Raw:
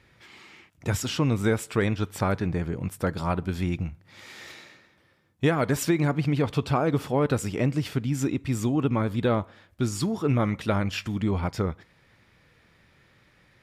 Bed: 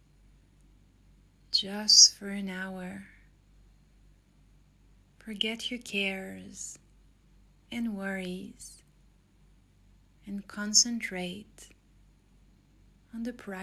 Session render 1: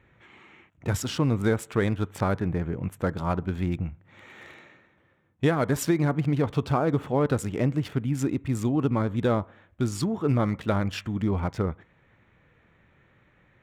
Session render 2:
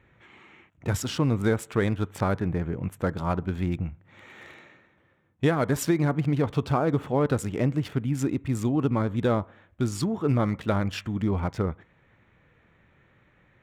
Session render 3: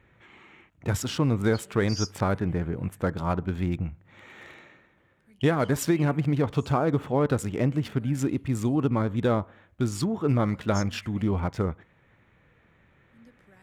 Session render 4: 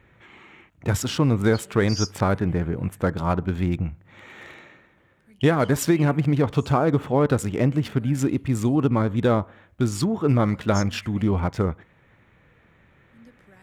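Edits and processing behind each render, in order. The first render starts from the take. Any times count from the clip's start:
local Wiener filter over 9 samples; dynamic bell 2.5 kHz, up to -4 dB, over -47 dBFS, Q 2.5
no audible change
add bed -18.5 dB
trim +4 dB

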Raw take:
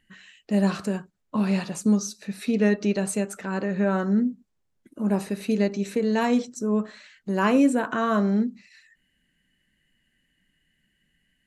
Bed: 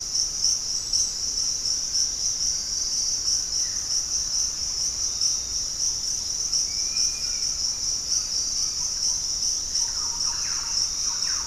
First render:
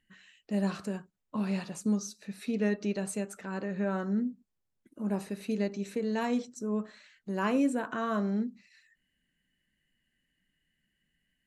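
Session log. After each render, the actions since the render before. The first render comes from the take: trim -8 dB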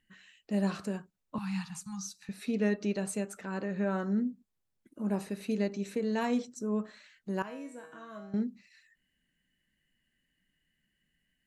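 1.38–2.29 s: Chebyshev band-stop 190–800 Hz, order 5; 7.42–8.34 s: feedback comb 160 Hz, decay 0.56 s, mix 90%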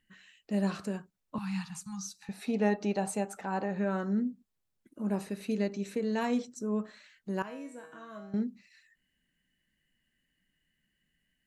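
2.21–3.79 s: peaking EQ 810 Hz +15 dB 0.49 oct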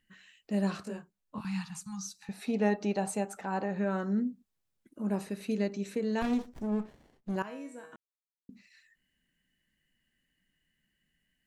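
0.83–1.45 s: detune thickener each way 49 cents; 6.22–7.36 s: sliding maximum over 33 samples; 7.96–8.49 s: mute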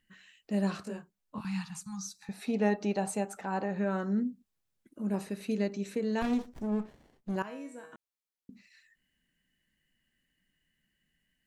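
1.83–2.34 s: band-stop 2.9 kHz, Q 5.7; 4.23–5.14 s: dynamic bell 950 Hz, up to -6 dB, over -53 dBFS, Q 0.93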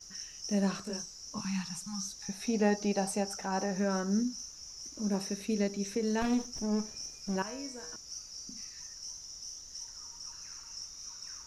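add bed -19.5 dB

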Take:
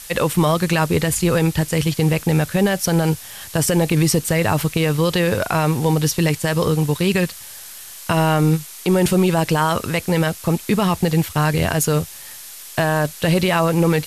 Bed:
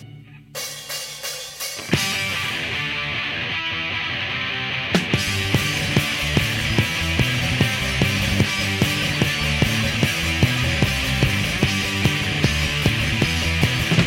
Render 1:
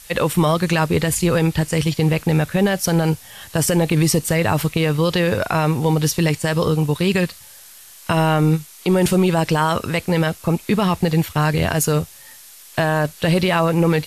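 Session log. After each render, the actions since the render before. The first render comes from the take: noise print and reduce 6 dB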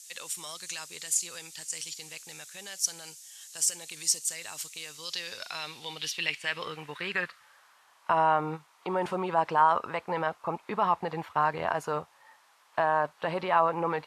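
band-pass sweep 6.9 kHz -> 970 Hz, 4.87–7.86 s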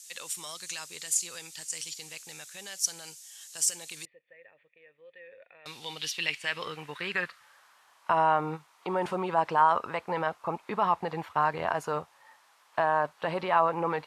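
4.05–5.66 s: cascade formant filter e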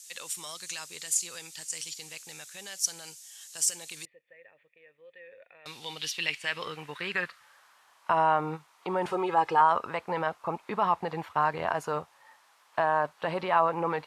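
9.10–9.61 s: comb 2.4 ms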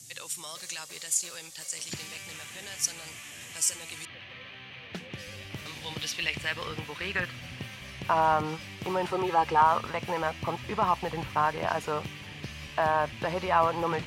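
add bed -21 dB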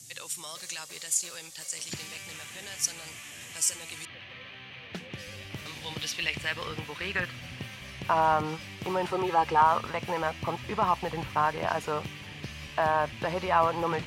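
no audible change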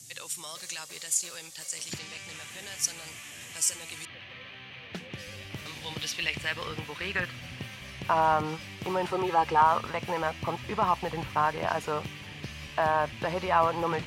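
1.98–2.48 s: low-pass 5.8 kHz -> 12 kHz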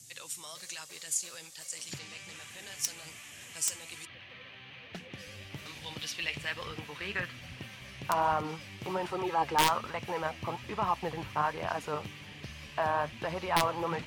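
integer overflow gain 12 dB; flange 1.2 Hz, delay 0.3 ms, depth 9.9 ms, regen +64%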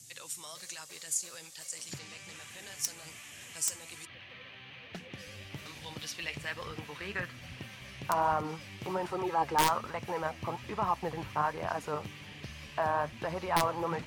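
dynamic bell 3 kHz, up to -5 dB, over -48 dBFS, Q 1.2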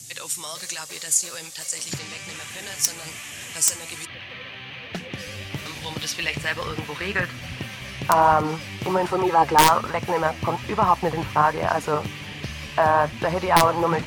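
trim +12 dB; peak limiter -3 dBFS, peak gain reduction 1 dB

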